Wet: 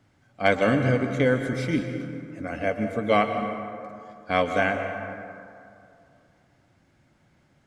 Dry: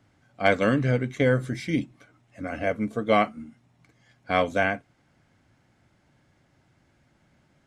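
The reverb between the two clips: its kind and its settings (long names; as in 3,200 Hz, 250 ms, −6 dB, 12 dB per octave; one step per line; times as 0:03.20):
dense smooth reverb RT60 2.5 s, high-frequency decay 0.45×, pre-delay 110 ms, DRR 6 dB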